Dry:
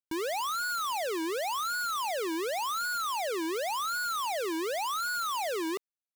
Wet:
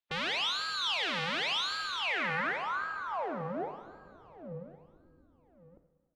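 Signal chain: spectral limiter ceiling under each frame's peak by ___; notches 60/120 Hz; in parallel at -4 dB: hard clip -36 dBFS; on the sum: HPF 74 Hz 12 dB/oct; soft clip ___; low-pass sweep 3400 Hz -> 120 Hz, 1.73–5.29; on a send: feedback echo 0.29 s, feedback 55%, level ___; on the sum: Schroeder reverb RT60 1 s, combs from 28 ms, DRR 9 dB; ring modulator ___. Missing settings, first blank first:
18 dB, -26.5 dBFS, -19.5 dB, 170 Hz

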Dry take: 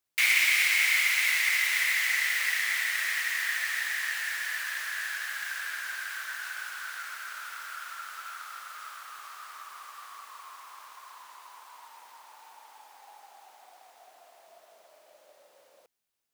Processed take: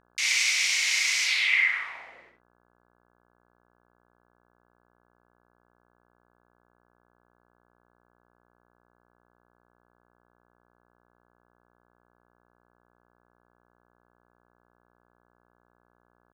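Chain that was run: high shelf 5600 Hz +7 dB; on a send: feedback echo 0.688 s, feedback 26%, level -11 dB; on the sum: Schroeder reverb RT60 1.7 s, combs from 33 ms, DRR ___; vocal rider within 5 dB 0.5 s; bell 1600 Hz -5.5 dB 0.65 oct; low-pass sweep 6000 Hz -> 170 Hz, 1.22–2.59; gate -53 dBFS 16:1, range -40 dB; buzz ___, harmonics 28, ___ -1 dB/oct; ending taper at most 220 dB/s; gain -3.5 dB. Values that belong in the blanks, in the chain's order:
-4 dB, 60 Hz, -64 dBFS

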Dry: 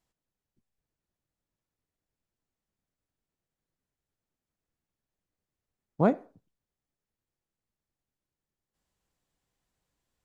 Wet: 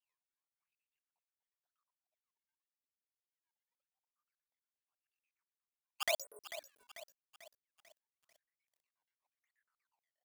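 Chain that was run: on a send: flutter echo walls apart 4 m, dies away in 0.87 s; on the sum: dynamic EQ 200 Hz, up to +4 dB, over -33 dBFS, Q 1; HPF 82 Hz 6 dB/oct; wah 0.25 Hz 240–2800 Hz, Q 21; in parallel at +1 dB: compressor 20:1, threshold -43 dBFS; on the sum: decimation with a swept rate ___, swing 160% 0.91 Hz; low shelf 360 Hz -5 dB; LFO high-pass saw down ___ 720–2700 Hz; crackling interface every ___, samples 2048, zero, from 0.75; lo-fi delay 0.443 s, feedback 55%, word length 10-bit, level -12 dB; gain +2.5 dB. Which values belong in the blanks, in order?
20×, 4.2 Hz, 0.12 s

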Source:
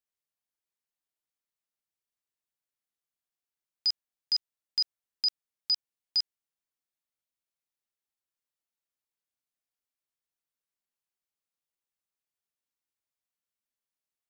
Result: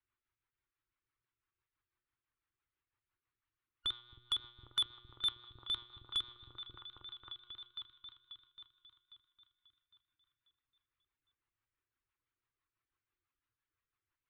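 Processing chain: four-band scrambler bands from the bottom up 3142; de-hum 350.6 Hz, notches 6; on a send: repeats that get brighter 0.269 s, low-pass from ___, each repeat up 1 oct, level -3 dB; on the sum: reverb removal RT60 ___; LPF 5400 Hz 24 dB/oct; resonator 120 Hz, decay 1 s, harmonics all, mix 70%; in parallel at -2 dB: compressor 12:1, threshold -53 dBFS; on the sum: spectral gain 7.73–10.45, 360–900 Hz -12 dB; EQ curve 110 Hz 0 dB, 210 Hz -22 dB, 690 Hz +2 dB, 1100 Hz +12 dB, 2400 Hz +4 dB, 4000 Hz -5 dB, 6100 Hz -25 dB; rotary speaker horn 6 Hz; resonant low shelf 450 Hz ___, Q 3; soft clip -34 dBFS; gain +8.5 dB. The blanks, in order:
200 Hz, 0.78 s, +11.5 dB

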